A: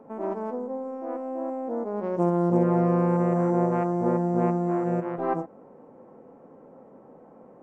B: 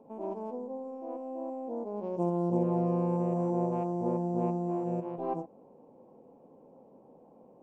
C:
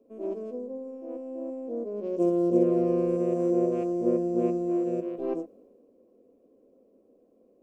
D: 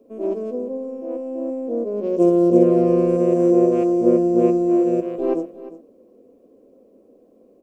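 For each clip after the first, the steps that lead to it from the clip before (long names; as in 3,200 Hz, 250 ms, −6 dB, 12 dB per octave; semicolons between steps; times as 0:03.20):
flat-topped bell 1,600 Hz −14 dB 1 octave; level −6.5 dB
phaser with its sweep stopped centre 360 Hz, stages 4; multiband upward and downward expander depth 40%; level +8 dB
single-tap delay 352 ms −16 dB; level +9 dB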